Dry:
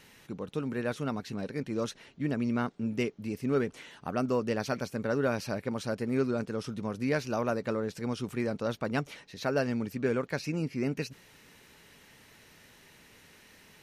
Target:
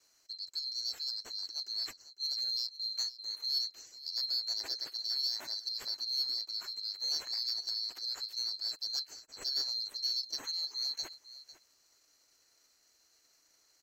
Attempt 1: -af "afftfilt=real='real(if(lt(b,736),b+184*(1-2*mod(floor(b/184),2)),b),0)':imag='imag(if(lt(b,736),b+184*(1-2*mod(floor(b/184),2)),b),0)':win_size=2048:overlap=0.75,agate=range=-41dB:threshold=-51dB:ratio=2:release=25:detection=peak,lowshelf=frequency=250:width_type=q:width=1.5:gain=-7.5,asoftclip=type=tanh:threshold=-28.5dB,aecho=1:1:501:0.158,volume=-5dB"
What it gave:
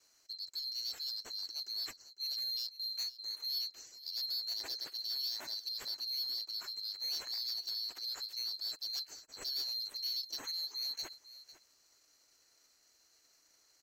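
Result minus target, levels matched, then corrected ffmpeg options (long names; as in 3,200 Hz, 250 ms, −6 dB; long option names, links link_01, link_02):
soft clipping: distortion +13 dB
-af "afftfilt=real='real(if(lt(b,736),b+184*(1-2*mod(floor(b/184),2)),b),0)':imag='imag(if(lt(b,736),b+184*(1-2*mod(floor(b/184),2)),b),0)':win_size=2048:overlap=0.75,agate=range=-41dB:threshold=-51dB:ratio=2:release=25:detection=peak,lowshelf=frequency=250:width_type=q:width=1.5:gain=-7.5,asoftclip=type=tanh:threshold=-18dB,aecho=1:1:501:0.158,volume=-5dB"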